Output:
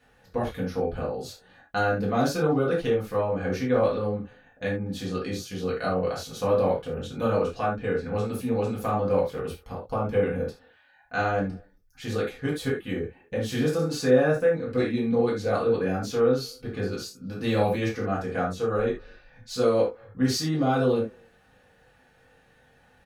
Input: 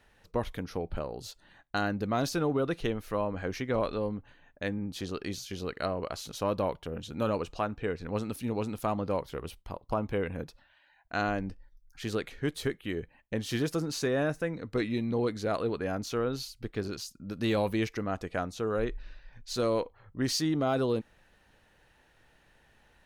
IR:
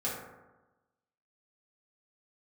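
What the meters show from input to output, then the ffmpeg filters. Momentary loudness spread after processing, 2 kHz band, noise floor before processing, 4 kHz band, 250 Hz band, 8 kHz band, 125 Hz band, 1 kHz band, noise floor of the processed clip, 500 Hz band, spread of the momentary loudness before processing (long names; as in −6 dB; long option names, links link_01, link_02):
10 LU, +4.5 dB, −65 dBFS, +2.0 dB, +4.5 dB, +2.0 dB, +5.5 dB, +5.5 dB, −60 dBFS, +7.5 dB, 10 LU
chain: -filter_complex "[0:a]asplit=2[link_01][link_02];[link_02]adelay=240,highpass=300,lowpass=3400,asoftclip=type=hard:threshold=-25.5dB,volume=-29dB[link_03];[link_01][link_03]amix=inputs=2:normalize=0[link_04];[1:a]atrim=start_sample=2205,atrim=end_sample=3969[link_05];[link_04][link_05]afir=irnorm=-1:irlink=0"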